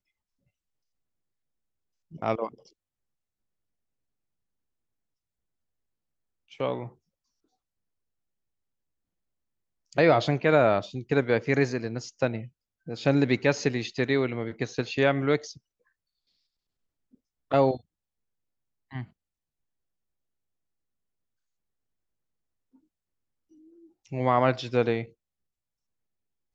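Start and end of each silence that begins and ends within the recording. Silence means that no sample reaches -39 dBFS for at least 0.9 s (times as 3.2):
2.54–6.53
6.89–9.93
15.57–17.51
17.77–18.92
19.04–24.12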